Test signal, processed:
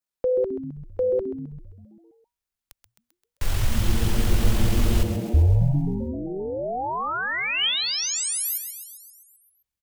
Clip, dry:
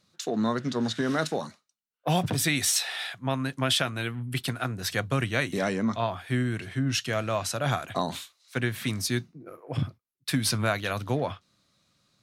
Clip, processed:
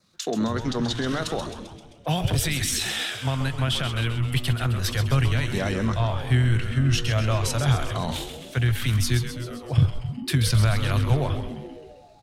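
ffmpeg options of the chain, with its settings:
-filter_complex "[0:a]adynamicequalizer=threshold=0.00316:dfrequency=3100:dqfactor=4.8:tfrequency=3100:tqfactor=4.8:attack=5:release=100:ratio=0.375:range=3:mode=boostabove:tftype=bell,tremolo=f=44:d=0.261,acrossover=split=180[a][b];[b]alimiter=limit=-21.5dB:level=0:latency=1:release=65[c];[a][c]amix=inputs=2:normalize=0,asubboost=boost=10.5:cutoff=76,asplit=9[d][e][f][g][h][i][j][k][l];[e]adelay=131,afreqshift=-120,volume=-8.5dB[m];[f]adelay=262,afreqshift=-240,volume=-12.8dB[n];[g]adelay=393,afreqshift=-360,volume=-17.1dB[o];[h]adelay=524,afreqshift=-480,volume=-21.4dB[p];[i]adelay=655,afreqshift=-600,volume=-25.7dB[q];[j]adelay=786,afreqshift=-720,volume=-30dB[r];[k]adelay=917,afreqshift=-840,volume=-34.3dB[s];[l]adelay=1048,afreqshift=-960,volume=-38.6dB[t];[d][m][n][o][p][q][r][s][t]amix=inputs=9:normalize=0,volume=4.5dB"

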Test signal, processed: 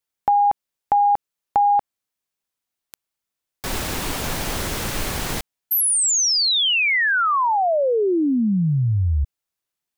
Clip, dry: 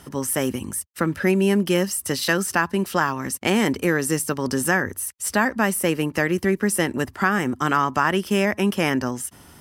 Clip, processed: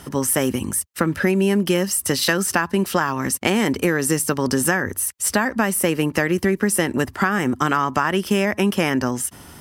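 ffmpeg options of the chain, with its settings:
-af "acompressor=threshold=-20dB:ratio=6,volume=5.5dB"

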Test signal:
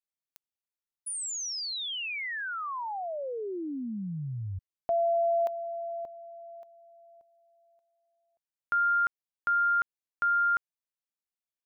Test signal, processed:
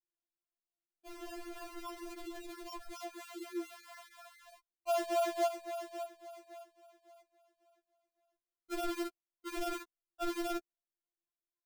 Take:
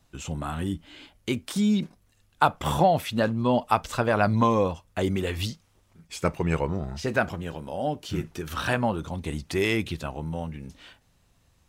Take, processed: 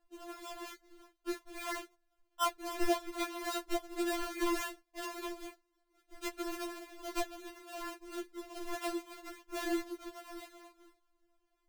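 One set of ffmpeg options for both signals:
-af "acrusher=samples=39:mix=1:aa=0.000001:lfo=1:lforange=39:lforate=3.6,afftfilt=real='re*4*eq(mod(b,16),0)':imag='im*4*eq(mod(b,16),0)':win_size=2048:overlap=0.75,volume=-8dB"

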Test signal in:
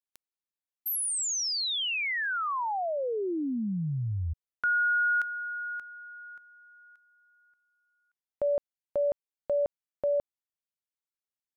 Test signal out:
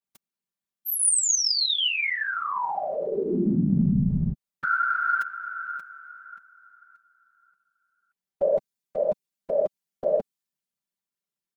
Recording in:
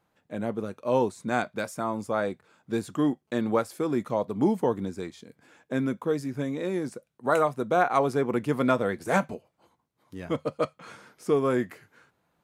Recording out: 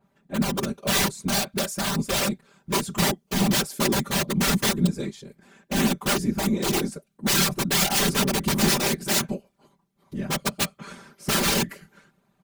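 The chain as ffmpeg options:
-af "aeval=exprs='(mod(12.6*val(0)+1,2)-1)/12.6':c=same,afftfilt=real='hypot(re,im)*cos(2*PI*random(0))':imag='hypot(re,im)*sin(2*PI*random(1))':win_size=512:overlap=0.75,equalizer=f=180:w=0.78:g=9,acontrast=55,aecho=1:1:5.1:0.56,adynamicequalizer=threshold=0.00794:dfrequency=2800:dqfactor=0.7:tfrequency=2800:tqfactor=0.7:attack=5:release=100:ratio=0.438:range=3.5:mode=boostabove:tftype=highshelf"

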